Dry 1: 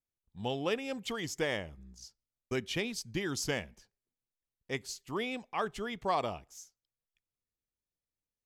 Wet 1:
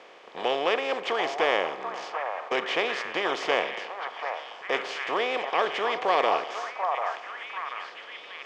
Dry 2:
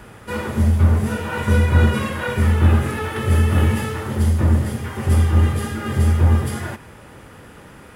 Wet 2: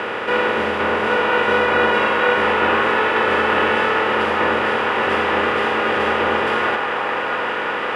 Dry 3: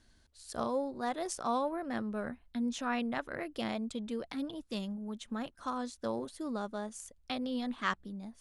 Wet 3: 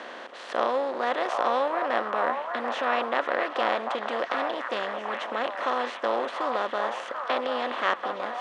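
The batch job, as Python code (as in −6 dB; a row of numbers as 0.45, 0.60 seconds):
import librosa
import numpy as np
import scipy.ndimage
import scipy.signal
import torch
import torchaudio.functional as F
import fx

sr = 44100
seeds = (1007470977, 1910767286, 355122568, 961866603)

y = fx.bin_compress(x, sr, power=0.4)
y = scipy.signal.sosfilt(scipy.signal.cheby1(2, 1.0, [470.0, 3000.0], 'bandpass', fs=sr, output='sos'), y)
y = fx.echo_stepped(y, sr, ms=739, hz=910.0, octaves=0.7, feedback_pct=70, wet_db=-2.0)
y = F.gain(torch.from_numpy(y), 4.5).numpy()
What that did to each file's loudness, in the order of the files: +7.5, +1.0, +9.0 LU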